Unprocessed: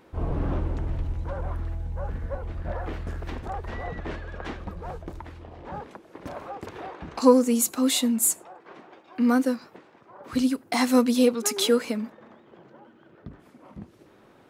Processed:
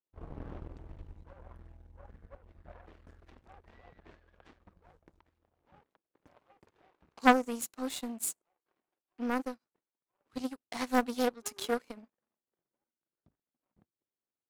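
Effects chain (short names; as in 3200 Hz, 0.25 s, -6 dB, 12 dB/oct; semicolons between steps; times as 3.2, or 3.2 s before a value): power-law curve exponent 2; Doppler distortion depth 0.65 ms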